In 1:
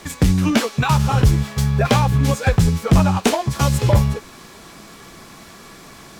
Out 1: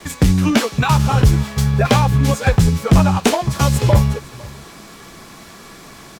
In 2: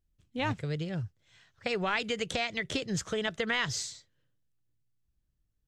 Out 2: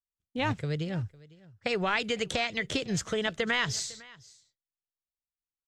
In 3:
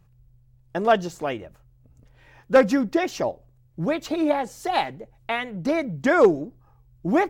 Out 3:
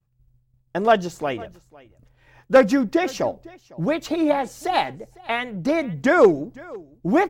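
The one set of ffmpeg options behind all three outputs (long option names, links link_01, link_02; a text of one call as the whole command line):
ffmpeg -i in.wav -af "agate=range=-33dB:threshold=-48dB:ratio=3:detection=peak,aecho=1:1:504:0.075,volume=2dB" out.wav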